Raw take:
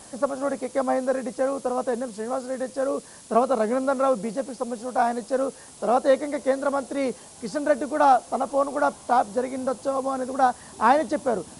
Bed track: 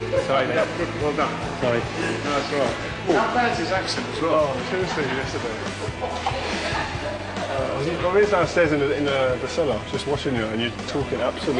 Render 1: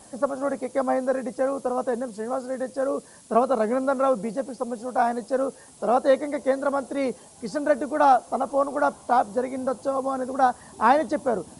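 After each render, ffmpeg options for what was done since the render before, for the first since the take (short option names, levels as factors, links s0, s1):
-af "afftdn=nr=6:nf=-46"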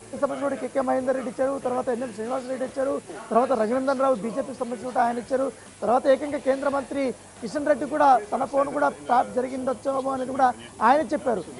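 -filter_complex "[1:a]volume=0.112[s0];[0:a][s0]amix=inputs=2:normalize=0"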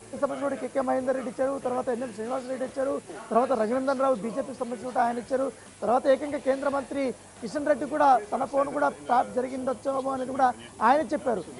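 -af "volume=0.75"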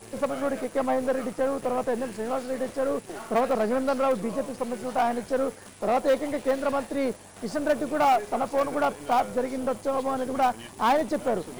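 -filter_complex "[0:a]asplit=2[s0][s1];[s1]acrusher=bits=4:dc=4:mix=0:aa=0.000001,volume=0.562[s2];[s0][s2]amix=inputs=2:normalize=0,asoftclip=type=tanh:threshold=0.158"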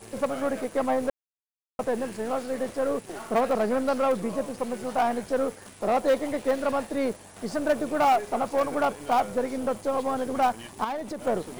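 -filter_complex "[0:a]asettb=1/sr,asplit=3[s0][s1][s2];[s0]atrim=end=10.844[s3];[s1]atrim=start=10.84:end=11.27,asetpts=PTS-STARTPTS,afade=t=in:d=0.004:c=qsin,afade=t=out:st=0.426:d=0.004:c=qsin,acompressor=threshold=0.0251:ratio=3:attack=3.2:release=140:knee=1:detection=peak[s4];[s2]atrim=start=11.266[s5];[s3][s4]acrossfade=d=0.004:c1=hsin:c2=qsin[s6];[s6][s5]acrossfade=d=0.004:c1=qsin:c2=hsin,asplit=3[s7][s8][s9];[s7]atrim=end=1.1,asetpts=PTS-STARTPTS,afade=t=out:st=1.096:d=0.004:c=hsin[s10];[s8]atrim=start=1.1:end=1.79,asetpts=PTS-STARTPTS,volume=0[s11];[s9]atrim=start=1.79,asetpts=PTS-STARTPTS,afade=t=in:d=0.004:c=hsin[s12];[s10][s11][s12]concat=n=3:v=0:a=1"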